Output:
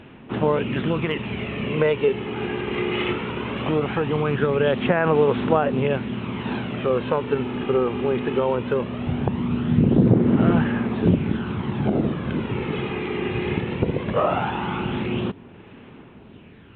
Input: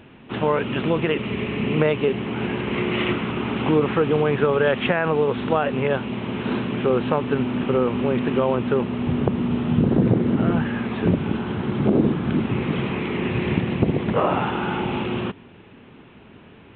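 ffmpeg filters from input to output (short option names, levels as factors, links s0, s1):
-af "aphaser=in_gain=1:out_gain=1:delay=2.5:decay=0.4:speed=0.19:type=sinusoidal,volume=0.794"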